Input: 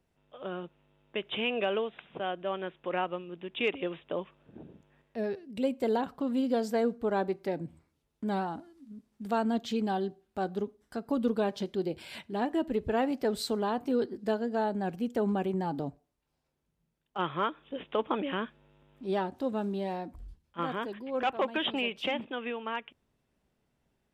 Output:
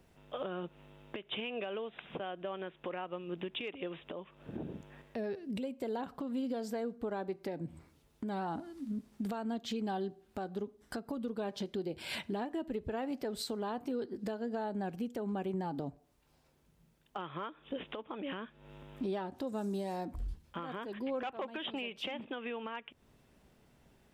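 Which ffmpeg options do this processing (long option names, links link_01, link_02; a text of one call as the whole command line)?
ffmpeg -i in.wav -filter_complex "[0:a]asettb=1/sr,asplit=3[link_01][link_02][link_03];[link_01]atrim=end=19.474[link_04];[link_02]atrim=start=19.47:end=20.05,asetpts=PTS-STARTPTS,afade=type=in:duration=0.004:curve=qsin,afade=type=out:start_time=0.576:duration=0.004:curve=qsin,highshelf=frequency=4600:width_type=q:width=1.5:gain=11.5[link_05];[link_03]atrim=start=20.046[link_06];[link_04][link_05]acrossfade=duration=0.004:curve1=hsin:curve2=qsin[link_07];[link_07][link_06]acrossfade=duration=0.004:curve1=qsin:curve2=hsin,acompressor=threshold=-45dB:ratio=4,alimiter=level_in=15.5dB:limit=-24dB:level=0:latency=1:release=336,volume=-15.5dB,volume=11dB" out.wav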